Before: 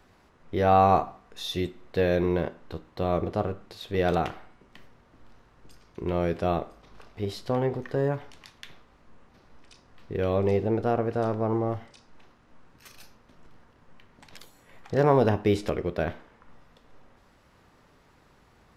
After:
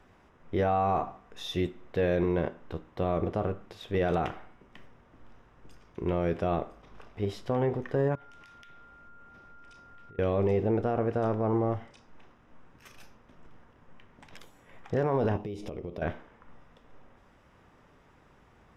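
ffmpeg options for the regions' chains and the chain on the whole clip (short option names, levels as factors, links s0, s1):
-filter_complex "[0:a]asettb=1/sr,asplit=3[s0][s1][s2];[s0]atrim=end=8.154[s3];[s1]atrim=start=8.15:end=10.19,asetpts=PTS-STARTPTS,afade=t=in:d=0.004:c=qsin,afade=t=out:st=2.036:d=0.004:c=qsin,acompressor=threshold=0.00355:ratio=16:attack=3.2:release=140:knee=1:detection=peak,aeval=exprs='val(0)+0.00251*sin(2*PI*1400*n/s)':c=same[s4];[s2]atrim=start=10.186[s5];[s3][s4]acrossfade=d=0.004:c1=hsin:c2=qsin[s6];[s6][s5]acrossfade=d=0.004:c1=qsin:c2=hsin,asettb=1/sr,asplit=3[s7][s8][s9];[s7]atrim=end=15.374[s10];[s8]atrim=start=15.37:end=16.02,asetpts=PTS-STARTPTS,afade=t=in:d=0.004:c=qsin,afade=t=out:st=0.646:d=0.004:c=qsin,equalizer=f=1600:w=1.8:g=-13.5,acompressor=threshold=0.0224:ratio=12:attack=3.2:release=140:knee=1:detection=peak,bandreject=f=7700:w=9.8[s11];[s9]atrim=start=16.016[s12];[s10][s11]acrossfade=d=0.004:c1=hsin:c2=qsin[s13];[s13][s12]acrossfade=d=0.004:c1=qsin:c2=hsin,highshelf=f=6800:g=-10.5,alimiter=limit=0.112:level=0:latency=1:release=13,equalizer=f=4300:w=6.7:g=-11.5"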